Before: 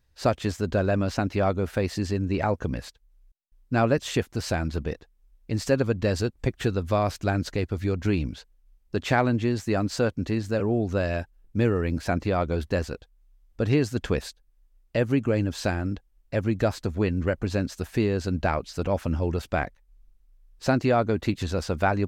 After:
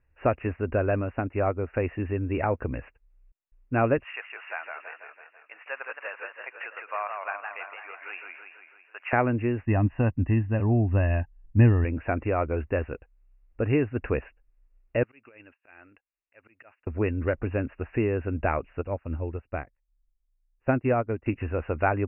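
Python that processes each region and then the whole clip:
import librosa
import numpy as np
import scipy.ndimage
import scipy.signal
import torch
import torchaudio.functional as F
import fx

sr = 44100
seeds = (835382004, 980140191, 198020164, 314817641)

y = fx.chain(x, sr, fx.air_absorb(metres=190.0),
    fx.upward_expand(threshold_db=-36.0, expansion=1.5), at=(1.01, 1.74))
y = fx.chain(y, sr, fx.highpass(hz=860.0, slope=24),
    fx.echo_warbled(ms=165, feedback_pct=59, rate_hz=2.8, cents=158, wet_db=-4.5), at=(4.04, 9.13))
y = fx.chain(y, sr, fx.low_shelf(hz=360.0, db=8.5),
    fx.comb(ms=1.1, depth=0.64),
    fx.upward_expand(threshold_db=-25.0, expansion=1.5), at=(9.65, 11.85))
y = fx.chain(y, sr, fx.auto_swell(attack_ms=172.0),
    fx.differentiator(),
    fx.over_compress(threshold_db=-49.0, ratio=-0.5), at=(15.03, 16.87))
y = fx.chain(y, sr, fx.low_shelf(hz=210.0, db=5.0),
    fx.upward_expand(threshold_db=-30.0, expansion=2.5), at=(18.81, 21.26))
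y = scipy.signal.sosfilt(scipy.signal.cheby1(10, 1.0, 2800.0, 'lowpass', fs=sr, output='sos'), y)
y = fx.peak_eq(y, sr, hz=180.0, db=-14.0, octaves=0.31)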